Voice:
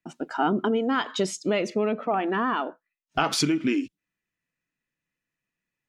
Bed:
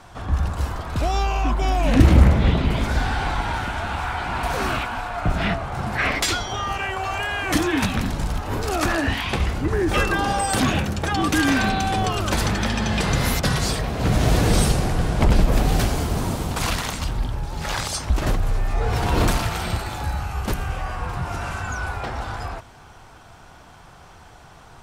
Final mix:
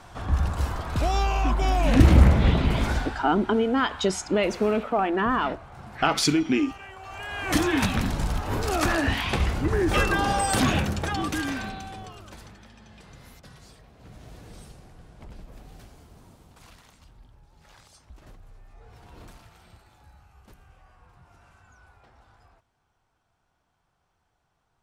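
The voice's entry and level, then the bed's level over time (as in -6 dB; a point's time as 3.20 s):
2.85 s, +1.5 dB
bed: 2.90 s -2 dB
3.25 s -16.5 dB
7.01 s -16.5 dB
7.57 s -2 dB
10.89 s -2 dB
12.66 s -28 dB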